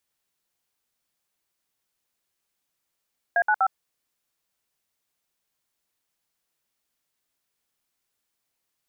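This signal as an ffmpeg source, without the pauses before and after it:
-f lavfi -i "aevalsrc='0.1*clip(min(mod(t,0.123),0.061-mod(t,0.123))/0.002,0,1)*(eq(floor(t/0.123),0)*(sin(2*PI*697*mod(t,0.123))+sin(2*PI*1633*mod(t,0.123)))+eq(floor(t/0.123),1)*(sin(2*PI*852*mod(t,0.123))+sin(2*PI*1477*mod(t,0.123)))+eq(floor(t/0.123),2)*(sin(2*PI*770*mod(t,0.123))+sin(2*PI*1336*mod(t,0.123))))':d=0.369:s=44100"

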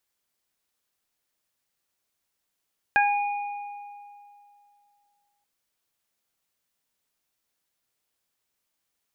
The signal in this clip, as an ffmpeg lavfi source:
-f lavfi -i "aevalsrc='0.119*pow(10,-3*t/2.62)*sin(2*PI*818*t)+0.158*pow(10,-3*t/0.29)*sin(2*PI*1636*t)+0.0631*pow(10,-3*t/1.76)*sin(2*PI*2454*t)':d=2.48:s=44100"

